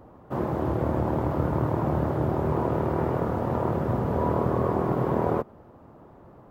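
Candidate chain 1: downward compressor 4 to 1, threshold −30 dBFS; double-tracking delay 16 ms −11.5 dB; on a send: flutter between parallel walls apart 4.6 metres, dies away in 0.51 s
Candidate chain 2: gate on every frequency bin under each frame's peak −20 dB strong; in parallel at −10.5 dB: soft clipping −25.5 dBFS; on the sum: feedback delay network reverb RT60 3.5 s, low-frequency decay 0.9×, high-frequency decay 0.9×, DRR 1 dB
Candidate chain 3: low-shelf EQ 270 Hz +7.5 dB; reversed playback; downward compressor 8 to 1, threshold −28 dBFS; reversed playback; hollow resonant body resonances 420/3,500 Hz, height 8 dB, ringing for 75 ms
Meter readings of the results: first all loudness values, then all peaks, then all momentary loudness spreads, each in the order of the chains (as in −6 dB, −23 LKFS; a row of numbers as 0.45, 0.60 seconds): −30.0, −22.0, −32.0 LKFS; −13.0, −8.0, −16.5 dBFS; 19, 10, 14 LU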